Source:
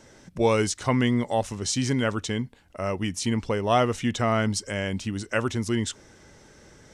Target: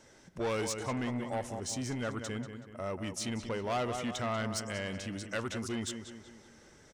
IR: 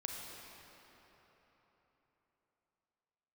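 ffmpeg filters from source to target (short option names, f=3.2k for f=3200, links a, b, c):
-filter_complex "[0:a]asettb=1/sr,asplit=3[a][b][c];[a]atrim=end=0.804[d];[b]atrim=start=0.8:end=3.07,asetpts=PTS-STARTPTS,afade=t=in:d=0.004:c=qsin,afade=t=out:st=2.266:d=0.004:c=qsin,equalizer=f=3.7k:w=0.87:g=-7[e];[c]atrim=start=3.066[f];[d][e]acrossfade=d=0.004:c1=hsin:c2=qsin[g];[g][f]acrossfade=d=0.004:c1=qsin:c2=hsin,asplit=2[h][i];[i]adelay=188,lowpass=f=4.3k:p=1,volume=-10dB,asplit=2[j][k];[k]adelay=188,lowpass=f=4.3k:p=1,volume=0.47,asplit=2[l][m];[m]adelay=188,lowpass=f=4.3k:p=1,volume=0.47,asplit=2[n][o];[o]adelay=188,lowpass=f=4.3k:p=1,volume=0.47,asplit=2[p][q];[q]adelay=188,lowpass=f=4.3k:p=1,volume=0.47[r];[h][j][l][n][p][r]amix=inputs=6:normalize=0,asoftclip=type=tanh:threshold=-21dB,lowshelf=f=350:g=-4.5,volume=-5.5dB"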